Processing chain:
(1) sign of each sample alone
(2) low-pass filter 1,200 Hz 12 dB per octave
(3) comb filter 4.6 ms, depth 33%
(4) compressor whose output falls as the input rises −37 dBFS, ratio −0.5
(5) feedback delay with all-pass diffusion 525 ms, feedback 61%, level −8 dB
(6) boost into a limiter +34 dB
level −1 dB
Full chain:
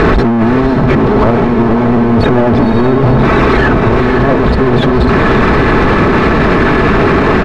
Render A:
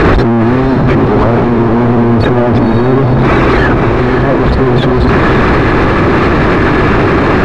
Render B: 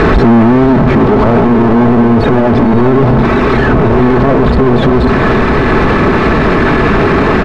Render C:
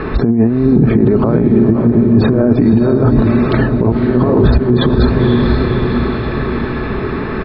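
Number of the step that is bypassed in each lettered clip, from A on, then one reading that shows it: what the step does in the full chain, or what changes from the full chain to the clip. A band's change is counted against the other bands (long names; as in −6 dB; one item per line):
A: 3, 125 Hz band +2.0 dB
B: 4, change in momentary loudness spread +1 LU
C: 1, change in crest factor +3.0 dB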